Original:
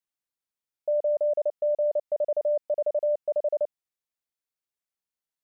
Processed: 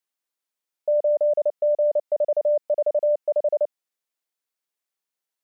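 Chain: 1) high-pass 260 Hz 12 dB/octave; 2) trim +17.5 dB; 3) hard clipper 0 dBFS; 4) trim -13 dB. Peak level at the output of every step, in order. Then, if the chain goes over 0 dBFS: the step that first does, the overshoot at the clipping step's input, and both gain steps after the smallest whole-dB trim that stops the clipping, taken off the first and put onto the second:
-20.5 dBFS, -3.0 dBFS, -3.0 dBFS, -16.0 dBFS; nothing clips

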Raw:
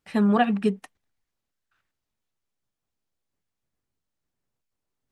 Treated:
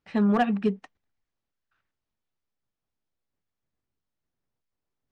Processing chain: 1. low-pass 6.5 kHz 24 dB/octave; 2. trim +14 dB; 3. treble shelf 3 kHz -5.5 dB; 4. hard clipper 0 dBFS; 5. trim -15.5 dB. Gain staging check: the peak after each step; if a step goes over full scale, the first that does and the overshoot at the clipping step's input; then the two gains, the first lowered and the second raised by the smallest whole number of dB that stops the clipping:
-9.5 dBFS, +4.5 dBFS, +4.0 dBFS, 0.0 dBFS, -15.5 dBFS; step 2, 4.0 dB; step 2 +10 dB, step 5 -11.5 dB

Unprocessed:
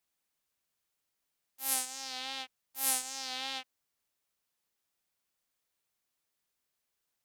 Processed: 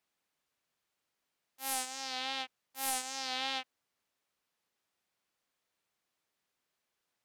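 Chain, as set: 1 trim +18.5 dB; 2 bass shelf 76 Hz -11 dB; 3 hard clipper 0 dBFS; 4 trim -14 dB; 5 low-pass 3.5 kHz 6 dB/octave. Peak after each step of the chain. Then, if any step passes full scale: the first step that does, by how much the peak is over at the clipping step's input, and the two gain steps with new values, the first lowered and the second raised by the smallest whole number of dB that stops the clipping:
+8.5 dBFS, +8.5 dBFS, 0.0 dBFS, -14.0 dBFS, -16.5 dBFS; step 1, 8.5 dB; step 1 +9.5 dB, step 4 -5 dB

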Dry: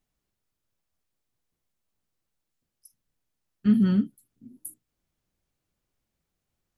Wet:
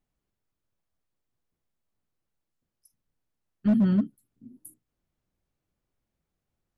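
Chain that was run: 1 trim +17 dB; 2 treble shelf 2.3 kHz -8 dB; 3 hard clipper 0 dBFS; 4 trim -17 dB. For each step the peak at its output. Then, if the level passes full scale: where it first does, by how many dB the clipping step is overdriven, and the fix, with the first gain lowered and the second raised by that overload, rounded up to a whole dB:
+5.5 dBFS, +5.5 dBFS, 0.0 dBFS, -17.0 dBFS; step 1, 5.5 dB; step 1 +11 dB, step 4 -11 dB

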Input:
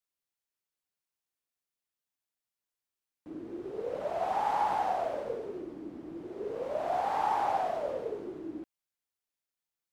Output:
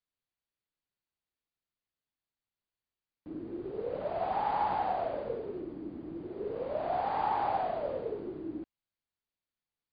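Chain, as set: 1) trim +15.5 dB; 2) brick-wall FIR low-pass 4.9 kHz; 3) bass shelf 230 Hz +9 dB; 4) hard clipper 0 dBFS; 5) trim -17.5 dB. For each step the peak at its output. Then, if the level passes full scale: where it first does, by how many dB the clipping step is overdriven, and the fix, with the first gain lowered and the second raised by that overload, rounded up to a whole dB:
-3.0 dBFS, -3.0 dBFS, -2.5 dBFS, -2.5 dBFS, -20.0 dBFS; nothing clips

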